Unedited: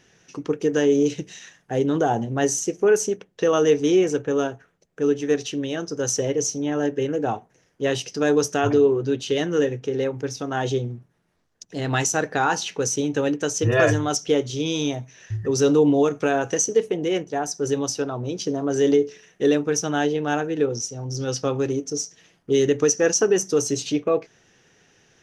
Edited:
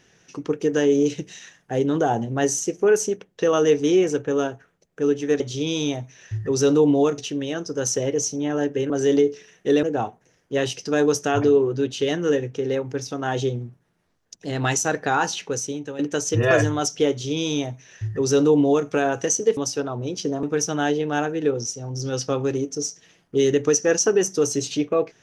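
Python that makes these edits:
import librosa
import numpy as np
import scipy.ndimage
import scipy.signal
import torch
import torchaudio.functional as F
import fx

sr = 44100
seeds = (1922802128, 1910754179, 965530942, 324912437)

y = fx.edit(x, sr, fx.fade_out_to(start_s=12.61, length_s=0.67, floor_db=-13.5),
    fx.duplicate(start_s=14.39, length_s=1.78, to_s=5.4),
    fx.cut(start_s=16.86, length_s=0.93),
    fx.move(start_s=18.65, length_s=0.93, to_s=7.12), tone=tone)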